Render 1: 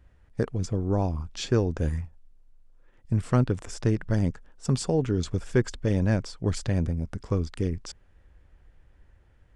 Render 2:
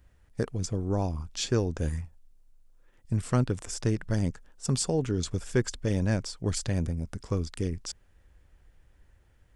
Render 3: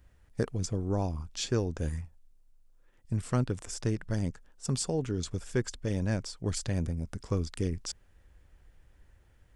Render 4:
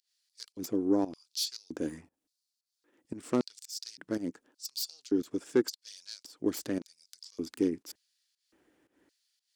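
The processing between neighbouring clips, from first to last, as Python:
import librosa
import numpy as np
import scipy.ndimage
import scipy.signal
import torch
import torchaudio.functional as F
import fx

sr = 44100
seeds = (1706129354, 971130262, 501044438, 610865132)

y1 = fx.high_shelf(x, sr, hz=4800.0, db=11.5)
y1 = y1 * 10.0 ** (-3.0 / 20.0)
y2 = fx.rider(y1, sr, range_db=4, speed_s=2.0)
y2 = y2 * 10.0 ** (-3.0 / 20.0)
y3 = fx.self_delay(y2, sr, depth_ms=0.13)
y3 = fx.filter_lfo_highpass(y3, sr, shape='square', hz=0.88, low_hz=300.0, high_hz=4500.0, q=4.3)
y3 = fx.volume_shaper(y3, sr, bpm=115, per_beat=1, depth_db=-16, release_ms=188.0, shape='fast start')
y3 = y3 * 10.0 ** (-1.5 / 20.0)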